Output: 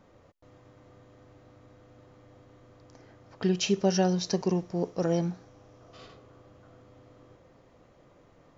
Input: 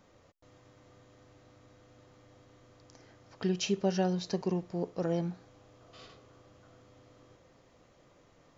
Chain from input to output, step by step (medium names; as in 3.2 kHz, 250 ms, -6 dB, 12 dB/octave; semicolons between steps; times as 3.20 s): 3.70–5.97 s: peaking EQ 5.7 kHz +8.5 dB 0.28 oct; tape noise reduction on one side only decoder only; trim +4.5 dB